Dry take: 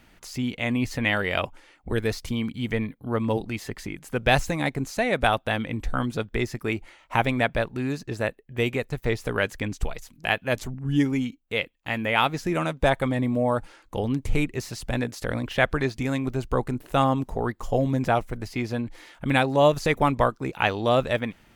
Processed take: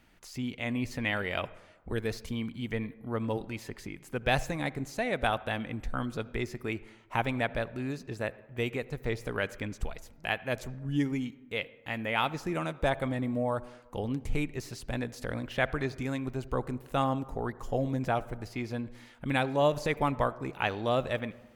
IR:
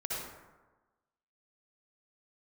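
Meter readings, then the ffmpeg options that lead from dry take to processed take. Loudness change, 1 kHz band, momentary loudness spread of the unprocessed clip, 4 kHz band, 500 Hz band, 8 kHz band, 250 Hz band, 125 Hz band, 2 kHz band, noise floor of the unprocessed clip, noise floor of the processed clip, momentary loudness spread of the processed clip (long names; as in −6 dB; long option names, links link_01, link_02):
−7.0 dB, −7.0 dB, 8 LU, −7.5 dB, −7.0 dB, −7.5 dB, −7.0 dB, −7.0 dB, −7.0 dB, −58 dBFS, −56 dBFS, 8 LU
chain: -filter_complex "[0:a]asplit=2[link_01][link_02];[1:a]atrim=start_sample=2205,lowpass=4200[link_03];[link_02][link_03]afir=irnorm=-1:irlink=0,volume=-20.5dB[link_04];[link_01][link_04]amix=inputs=2:normalize=0,volume=-7.5dB"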